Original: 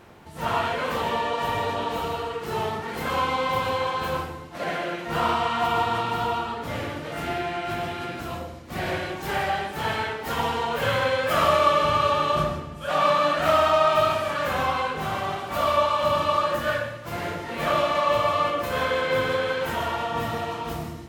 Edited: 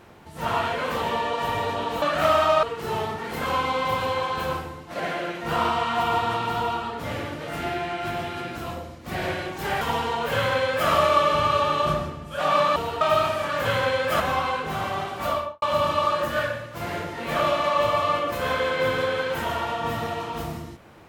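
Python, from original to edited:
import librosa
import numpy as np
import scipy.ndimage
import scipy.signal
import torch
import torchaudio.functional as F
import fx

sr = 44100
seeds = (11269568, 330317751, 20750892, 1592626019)

y = fx.studio_fade_out(x, sr, start_s=15.55, length_s=0.38)
y = fx.edit(y, sr, fx.swap(start_s=2.02, length_s=0.25, other_s=13.26, other_length_s=0.61),
    fx.cut(start_s=9.45, length_s=0.86),
    fx.duplicate(start_s=10.84, length_s=0.55, to_s=14.51), tone=tone)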